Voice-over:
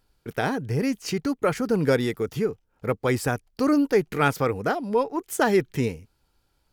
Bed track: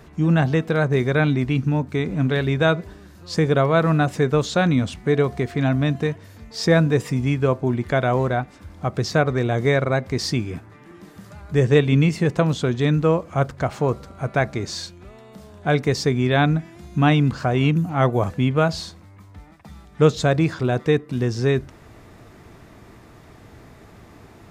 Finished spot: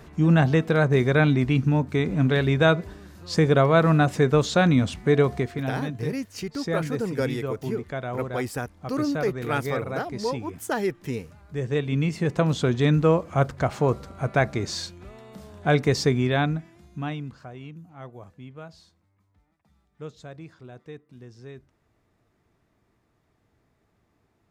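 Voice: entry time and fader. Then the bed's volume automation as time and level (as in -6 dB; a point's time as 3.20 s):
5.30 s, -5.5 dB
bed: 5.35 s -0.5 dB
5.73 s -11.5 dB
11.59 s -11.5 dB
12.62 s -1 dB
16.09 s -1 dB
17.69 s -23 dB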